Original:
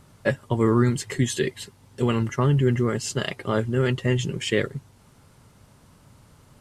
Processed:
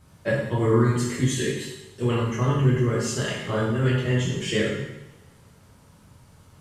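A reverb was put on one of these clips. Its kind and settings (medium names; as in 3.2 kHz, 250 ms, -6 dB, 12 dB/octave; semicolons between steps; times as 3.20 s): two-slope reverb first 0.91 s, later 2.5 s, from -26 dB, DRR -7 dB; trim -7.5 dB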